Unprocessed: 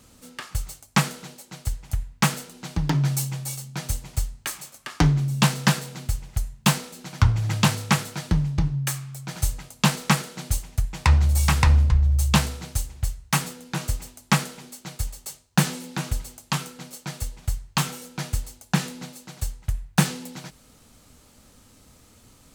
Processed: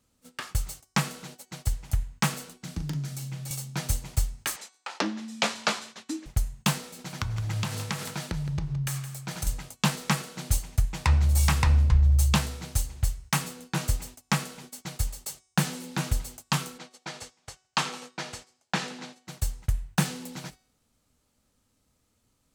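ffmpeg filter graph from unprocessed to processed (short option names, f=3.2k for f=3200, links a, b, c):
-filter_complex "[0:a]asettb=1/sr,asplit=3[a][b][c];[a]atrim=end=2.634[d];[b]atrim=start=2.63:end=3.51,asetpts=PTS-STARTPTS,afade=t=in:d=0.004:c=qsin,afade=t=out:st=0.876:d=0.004:c=qsin,equalizer=f=900:t=o:w=0.51:g=-6,acrossover=split=210|5300[e][f][g];[e]acompressor=threshold=-32dB:ratio=4[h];[f]acompressor=threshold=-45dB:ratio=4[i];[g]acompressor=threshold=-46dB:ratio=4[j];[h][i][j]amix=inputs=3:normalize=0,asplit=2[k][l];[l]adelay=40,volume=-8.5dB[m];[k][m]amix=inputs=2:normalize=0,atrim=end_sample=38808[n];[c]atrim=start=3.506[o];[d][n]acrossfade=d=0.004:c1=hsin:c2=qsin[p];[p][o]acrossfade=d=0.004:c1=qsin:c2=hsin,asettb=1/sr,asplit=3[q][r][s];[q]atrim=end=4.564[t];[r]atrim=start=4.56:end=6.26,asetpts=PTS-STARTPTS,afade=t=in:d=0.004:c=qsin,afade=t=out:st=1.696:d=0.004:c=qsin,afreqshift=-360,highpass=500,lowpass=6.7k[u];[s]atrim=start=6.256[v];[t][u]acrossfade=d=0.004:c1=hsin:c2=qsin[w];[w][v]acrossfade=d=0.004:c1=qsin:c2=hsin,asettb=1/sr,asplit=3[x][y][z];[x]atrim=end=6.824[aa];[y]atrim=start=6.82:end=9.47,asetpts=PTS-STARTPTS,afade=t=in:d=0.004:c=qsin,afade=t=out:st=2.646:d=0.004:c=qsin,bandreject=f=280:w=5.9,acompressor=threshold=-27dB:ratio=8:attack=3.2:release=140:knee=1:detection=peak,aecho=1:1:167:0.266,atrim=end_sample=116865[ab];[z]atrim=start=9.466[ac];[aa][ab]acrossfade=d=0.004:c1=hsin:c2=qsin[ad];[ad][ac]acrossfade=d=0.004:c1=qsin:c2=hsin,asettb=1/sr,asplit=3[ae][af][ag];[ae]atrim=end=16.784[ah];[af]atrim=start=16.78:end=19.27,asetpts=PTS-STARTPTS,afade=t=in:d=0.004:c=qsin,afade=t=out:st=2.486:d=0.004:c=qsin,highpass=310,lowpass=5.9k,aecho=1:1:84|168|252|336|420:0.15|0.0823|0.0453|0.0249|0.0137,atrim=end_sample=109809[ai];[ag]atrim=start=19.266[aj];[ah][ai]acrossfade=d=0.004:c1=hsin:c2=qsin[ak];[ak][aj]acrossfade=d=0.004:c1=qsin:c2=hsin,agate=range=-18dB:threshold=-43dB:ratio=16:detection=peak,bandreject=f=373.7:t=h:w=4,bandreject=f=747.4:t=h:w=4,bandreject=f=1.1211k:t=h:w=4,bandreject=f=1.4948k:t=h:w=4,bandreject=f=1.8685k:t=h:w=4,bandreject=f=2.2422k:t=h:w=4,bandreject=f=2.6159k:t=h:w=4,bandreject=f=2.9896k:t=h:w=4,bandreject=f=3.3633k:t=h:w=4,bandreject=f=3.737k:t=h:w=4,bandreject=f=4.1107k:t=h:w=4,bandreject=f=4.4844k:t=h:w=4,bandreject=f=4.8581k:t=h:w=4,bandreject=f=5.2318k:t=h:w=4,bandreject=f=5.6055k:t=h:w=4,bandreject=f=5.9792k:t=h:w=4,bandreject=f=6.3529k:t=h:w=4,bandreject=f=6.7266k:t=h:w=4,bandreject=f=7.1003k:t=h:w=4,bandreject=f=7.474k:t=h:w=4,bandreject=f=7.8477k:t=h:w=4,bandreject=f=8.2214k:t=h:w=4,bandreject=f=8.5951k:t=h:w=4,bandreject=f=8.9688k:t=h:w=4,alimiter=limit=-10.5dB:level=0:latency=1:release=461"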